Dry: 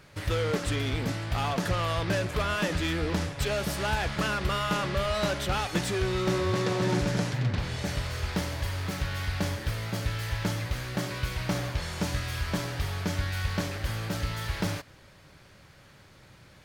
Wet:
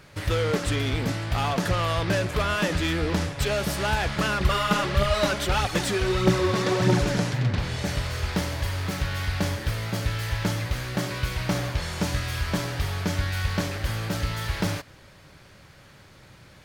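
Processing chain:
0:04.40–0:07.18: phase shifter 1.6 Hz, delay 4.9 ms, feedback 49%
level +3.5 dB

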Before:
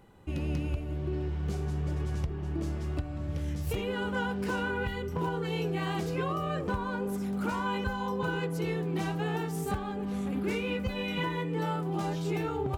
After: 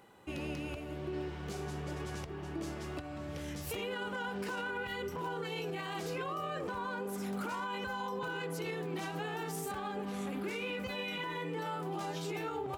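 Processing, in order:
high-pass filter 510 Hz 6 dB per octave
brickwall limiter −33 dBFS, peak gain reduction 10.5 dB
level +3 dB

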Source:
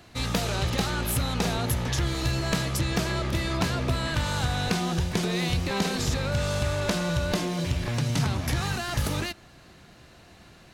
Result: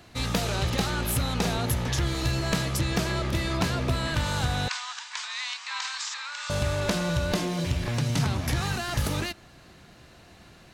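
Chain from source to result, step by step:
0:04.68–0:06.50: Chebyshev band-pass filter 960–7,900 Hz, order 4

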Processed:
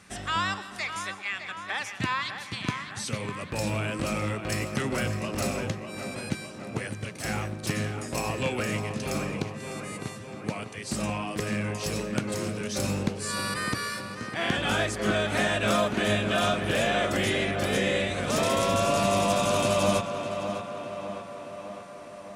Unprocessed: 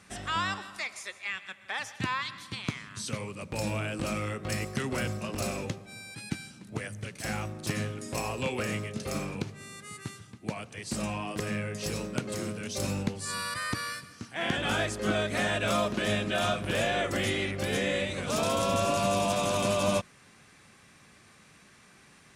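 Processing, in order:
0:15.81–0:16.34: notch filter 5,300 Hz, Q 9.5
tape delay 605 ms, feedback 69%, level −7 dB, low-pass 2,900 Hz
level +2.5 dB

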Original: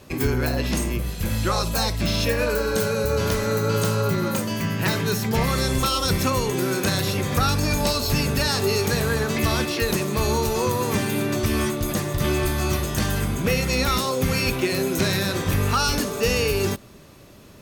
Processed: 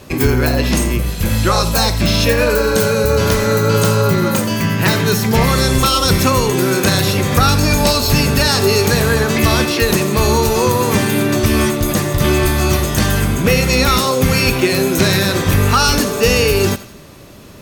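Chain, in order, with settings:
feedback echo with a high-pass in the loop 86 ms, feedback 44%, level −15 dB
level +8.5 dB

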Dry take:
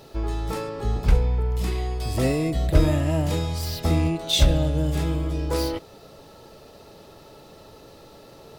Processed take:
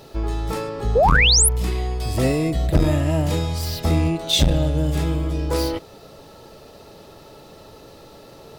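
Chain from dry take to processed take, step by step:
sound drawn into the spectrogram rise, 0:00.95–0:01.49, 420–12,000 Hz −17 dBFS
saturating transformer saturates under 200 Hz
level +3 dB

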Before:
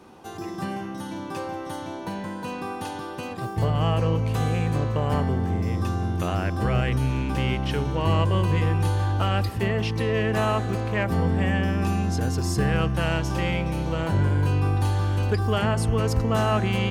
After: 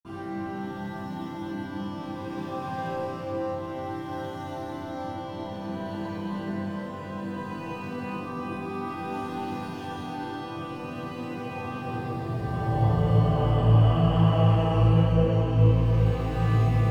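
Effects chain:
running median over 5 samples
extreme stretch with random phases 4.6×, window 0.50 s, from 0:00.80
convolution reverb RT60 1.8 s, pre-delay 47 ms, DRR −60 dB

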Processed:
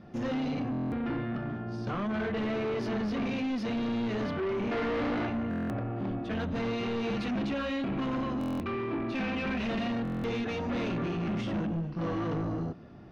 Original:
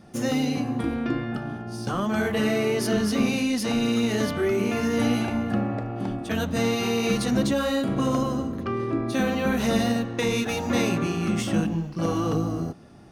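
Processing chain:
notch filter 820 Hz, Q 17
0:04.72–0:05.26: gain on a spectral selection 250–2,200 Hz +10 dB
0:07.17–0:09.92: thirty-one-band graphic EQ 125 Hz −7 dB, 500 Hz −5 dB, 2,500 Hz +12 dB
soft clipping −28 dBFS, distortion −6 dB
high-frequency loss of the air 240 metres
buffer that repeats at 0:00.71/0:05.49/0:08.39/0:10.03, samples 1,024, times 8

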